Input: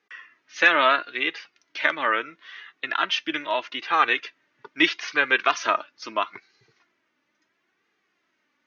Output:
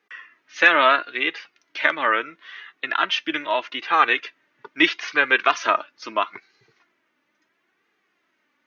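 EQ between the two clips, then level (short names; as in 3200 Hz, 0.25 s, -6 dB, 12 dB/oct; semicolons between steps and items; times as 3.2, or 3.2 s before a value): low shelf 83 Hz -9.5 dB; bell 5400 Hz -4 dB 1.1 oct; +3.0 dB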